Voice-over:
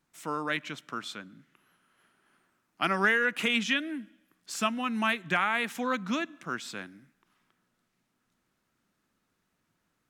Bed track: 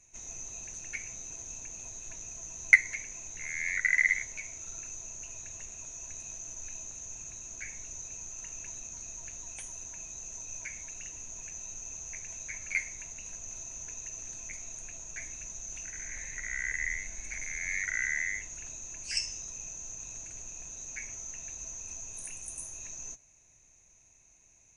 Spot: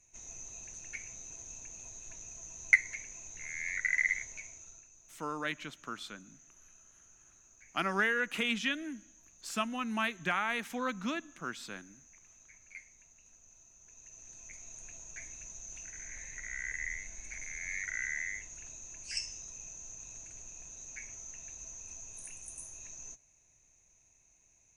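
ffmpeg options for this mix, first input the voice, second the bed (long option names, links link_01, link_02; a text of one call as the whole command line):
ffmpeg -i stem1.wav -i stem2.wav -filter_complex "[0:a]adelay=4950,volume=-5dB[link_01];[1:a]volume=8.5dB,afade=type=out:start_time=4.35:duration=0.53:silence=0.211349,afade=type=in:start_time=13.8:duration=1.1:silence=0.223872[link_02];[link_01][link_02]amix=inputs=2:normalize=0" out.wav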